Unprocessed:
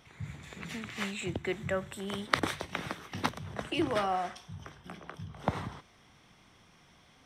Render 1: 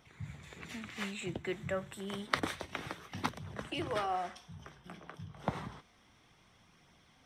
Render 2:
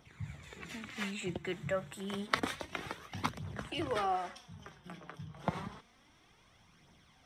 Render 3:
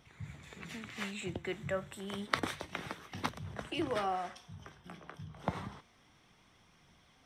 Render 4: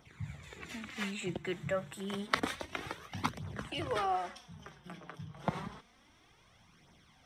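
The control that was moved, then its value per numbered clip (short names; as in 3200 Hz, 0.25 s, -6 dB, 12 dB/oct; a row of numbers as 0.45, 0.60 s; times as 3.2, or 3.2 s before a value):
flange, regen: -59, +30, +79, +5%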